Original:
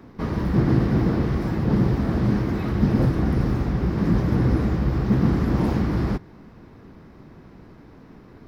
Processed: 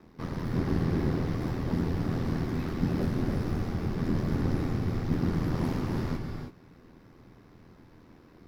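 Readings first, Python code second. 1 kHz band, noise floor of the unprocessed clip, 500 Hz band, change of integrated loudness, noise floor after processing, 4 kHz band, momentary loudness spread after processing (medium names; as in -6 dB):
-7.5 dB, -47 dBFS, -7.0 dB, -8.5 dB, -55 dBFS, -4.0 dB, 5 LU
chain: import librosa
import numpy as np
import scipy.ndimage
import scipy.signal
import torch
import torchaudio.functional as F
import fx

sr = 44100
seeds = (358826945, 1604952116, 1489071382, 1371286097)

y = x * np.sin(2.0 * np.pi * 41.0 * np.arange(len(x)) / sr)
y = fx.high_shelf(y, sr, hz=3400.0, db=7.0)
y = fx.rev_gated(y, sr, seeds[0], gate_ms=350, shape='rising', drr_db=4.0)
y = y * 10.0 ** (-6.5 / 20.0)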